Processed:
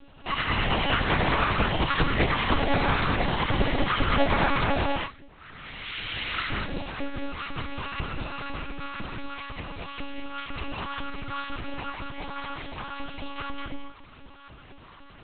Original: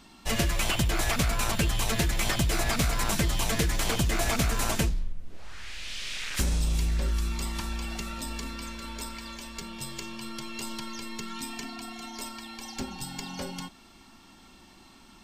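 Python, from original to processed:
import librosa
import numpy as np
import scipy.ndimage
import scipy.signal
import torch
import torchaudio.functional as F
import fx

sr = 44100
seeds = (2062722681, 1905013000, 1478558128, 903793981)

y = fx.peak_eq(x, sr, hz=270.0, db=12.0, octaves=0.35)
y = fx.filter_lfo_highpass(y, sr, shape='saw_up', hz=2.0, low_hz=340.0, high_hz=1700.0, q=3.8)
y = fx.notch_comb(y, sr, f0_hz=850.0)
y = fx.rev_gated(y, sr, seeds[0], gate_ms=250, shape='rising', drr_db=-2.0)
y = fx.lpc_monotone(y, sr, seeds[1], pitch_hz=280.0, order=8)
y = y * librosa.db_to_amplitude(1.5)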